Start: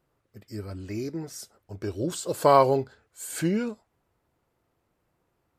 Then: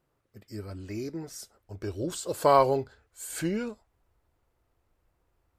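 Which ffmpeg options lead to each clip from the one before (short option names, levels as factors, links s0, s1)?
-af "asubboost=boost=7:cutoff=63,volume=0.794"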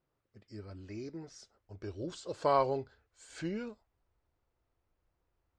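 -af "lowpass=f=6200:w=0.5412,lowpass=f=6200:w=1.3066,volume=0.422"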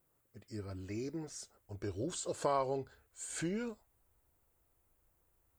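-af "acompressor=threshold=0.0126:ratio=2,aexciter=amount=5.4:drive=3.8:freq=7100,volume=1.41"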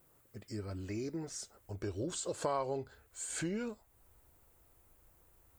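-af "acompressor=threshold=0.00112:ratio=1.5,volume=2.82"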